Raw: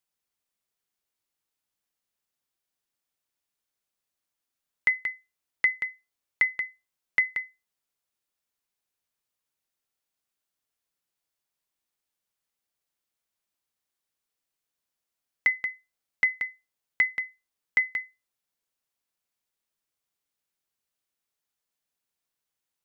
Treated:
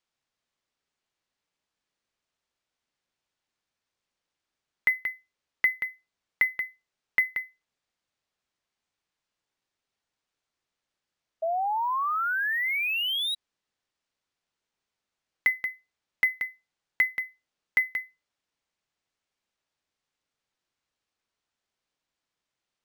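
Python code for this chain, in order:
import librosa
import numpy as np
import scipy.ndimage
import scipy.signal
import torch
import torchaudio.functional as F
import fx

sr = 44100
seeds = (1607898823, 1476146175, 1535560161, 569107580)

y = fx.spec_paint(x, sr, seeds[0], shape='rise', start_s=11.42, length_s=1.93, low_hz=640.0, high_hz=3900.0, level_db=-27.0)
y = np.interp(np.arange(len(y)), np.arange(len(y))[::3], y[::3])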